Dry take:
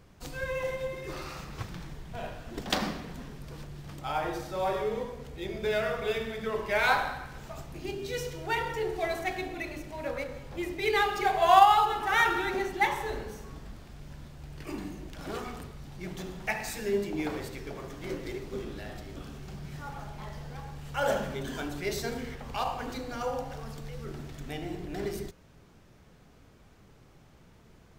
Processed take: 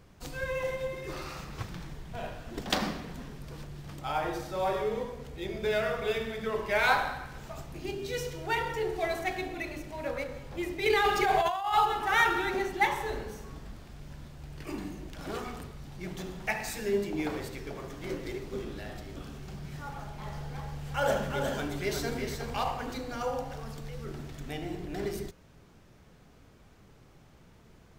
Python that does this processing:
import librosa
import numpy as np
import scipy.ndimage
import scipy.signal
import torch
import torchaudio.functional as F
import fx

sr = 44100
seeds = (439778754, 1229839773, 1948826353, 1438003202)

y = fx.over_compress(x, sr, threshold_db=-27.0, ratio=-1.0, at=(10.86, 11.75))
y = fx.echo_single(y, sr, ms=359, db=-5.5, at=(19.89, 22.78))